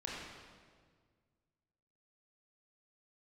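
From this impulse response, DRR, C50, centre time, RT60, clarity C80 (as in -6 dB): -5.0 dB, -1.5 dB, 102 ms, 1.7 s, 0.5 dB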